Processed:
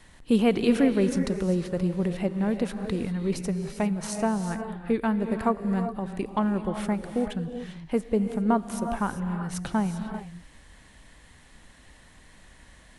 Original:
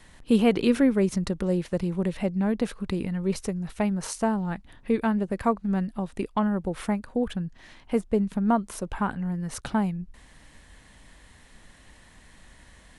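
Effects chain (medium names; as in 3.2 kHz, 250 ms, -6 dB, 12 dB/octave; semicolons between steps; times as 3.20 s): gated-style reverb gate 420 ms rising, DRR 7 dB; trim -1 dB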